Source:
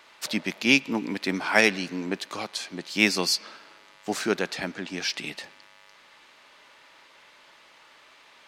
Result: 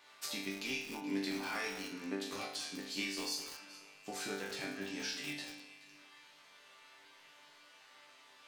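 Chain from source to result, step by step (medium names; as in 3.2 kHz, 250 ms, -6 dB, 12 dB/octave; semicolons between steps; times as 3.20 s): treble shelf 4.8 kHz +6 dB; compression 4:1, threshold -29 dBFS, peak gain reduction 14 dB; chord resonator G2 sus4, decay 0.64 s; echo whose repeats swap between lows and highs 213 ms, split 1 kHz, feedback 51%, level -11.5 dB; bit-crushed delay 196 ms, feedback 35%, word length 8-bit, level -7.5 dB; trim +9 dB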